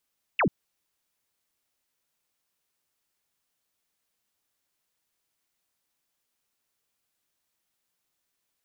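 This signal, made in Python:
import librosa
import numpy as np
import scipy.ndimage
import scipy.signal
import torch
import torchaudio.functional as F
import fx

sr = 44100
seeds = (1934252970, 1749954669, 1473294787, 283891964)

y = fx.laser_zap(sr, level_db=-19.5, start_hz=3000.0, end_hz=130.0, length_s=0.09, wave='sine')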